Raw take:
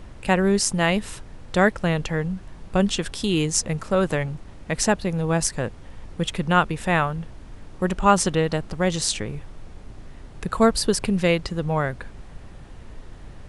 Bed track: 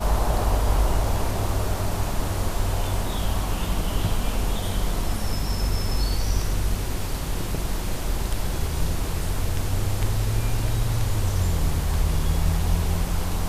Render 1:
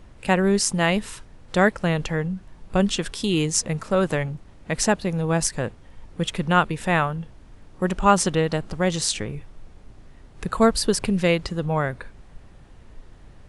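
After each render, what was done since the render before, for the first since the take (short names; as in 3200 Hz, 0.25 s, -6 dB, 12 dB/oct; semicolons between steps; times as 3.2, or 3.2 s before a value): noise print and reduce 6 dB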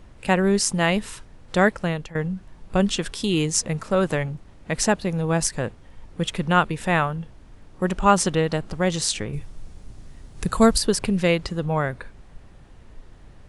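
1.63–2.15 fade out equal-power, to -18 dB; 9.33–10.78 tone controls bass +5 dB, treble +9 dB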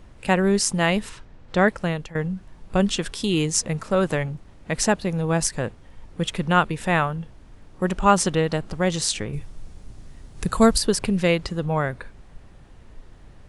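1.09–1.68 air absorption 92 m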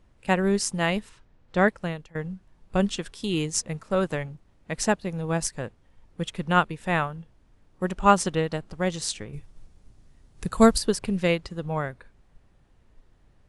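upward expander 1.5:1, over -37 dBFS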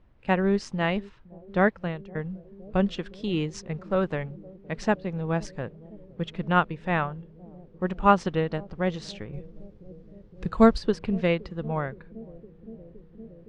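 air absorption 220 m; analogue delay 0.515 s, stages 2048, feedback 85%, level -22 dB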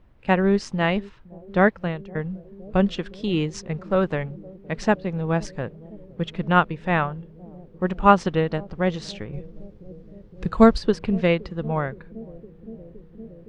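gain +4 dB; limiter -1 dBFS, peak gain reduction 1.5 dB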